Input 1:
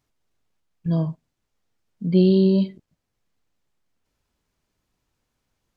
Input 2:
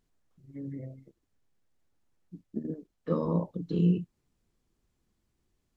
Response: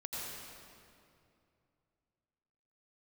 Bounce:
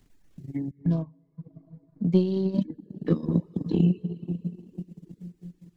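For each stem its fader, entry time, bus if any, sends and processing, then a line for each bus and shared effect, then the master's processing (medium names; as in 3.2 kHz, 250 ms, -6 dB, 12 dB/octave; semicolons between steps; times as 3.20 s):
-6.0 dB, 0.00 s, send -19.5 dB, local Wiener filter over 15 samples
+0.5 dB, 0.00 s, muted 0.71–2.35 s, send -5 dB, high-order bell 810 Hz -13.5 dB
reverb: on, RT60 2.5 s, pre-delay 78 ms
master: reverb removal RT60 0.68 s; transient shaper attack +8 dB, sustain -7 dB; three bands compressed up and down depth 40%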